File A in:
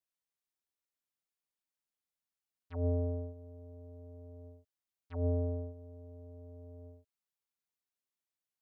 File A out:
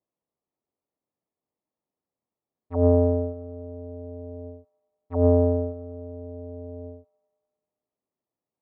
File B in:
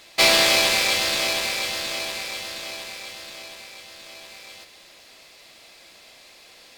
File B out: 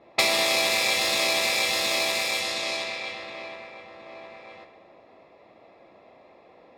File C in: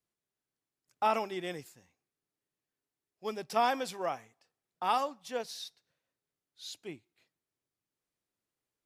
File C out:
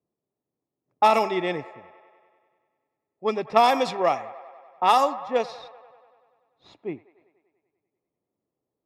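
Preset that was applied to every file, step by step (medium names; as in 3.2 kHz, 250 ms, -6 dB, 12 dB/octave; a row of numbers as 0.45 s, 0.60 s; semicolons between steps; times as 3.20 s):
tracing distortion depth 0.032 ms; compression 8:1, threshold -25 dBFS; Chebyshev shaper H 7 -32 dB, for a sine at -12.5 dBFS; level-controlled noise filter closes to 620 Hz, open at -28.5 dBFS; comb of notches 1.5 kHz; feedback echo behind a band-pass 97 ms, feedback 70%, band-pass 1.1 kHz, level -15.5 dB; normalise loudness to -23 LUFS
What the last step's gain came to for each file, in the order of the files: +18.0 dB, +7.0 dB, +14.0 dB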